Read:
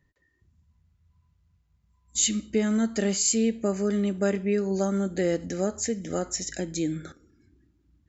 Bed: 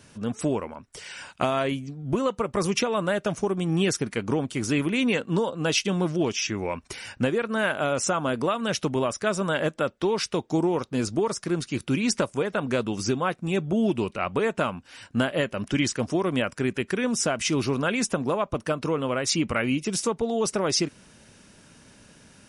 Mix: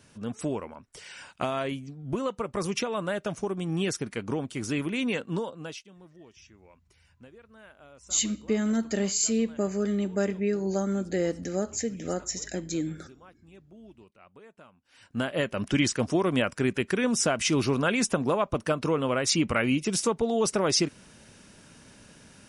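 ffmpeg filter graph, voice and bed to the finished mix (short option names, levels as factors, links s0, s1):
-filter_complex "[0:a]adelay=5950,volume=0.794[s0];[1:a]volume=12.6,afade=t=out:st=5.3:d=0.54:silence=0.0794328,afade=t=in:st=14.8:d=0.81:silence=0.0446684[s1];[s0][s1]amix=inputs=2:normalize=0"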